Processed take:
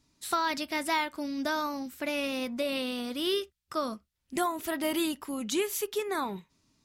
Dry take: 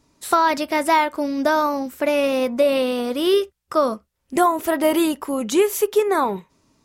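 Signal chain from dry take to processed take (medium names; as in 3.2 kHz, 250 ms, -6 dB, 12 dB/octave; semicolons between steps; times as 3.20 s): graphic EQ 500/1000/4000 Hz -8/-4/+4 dB; trim -7.5 dB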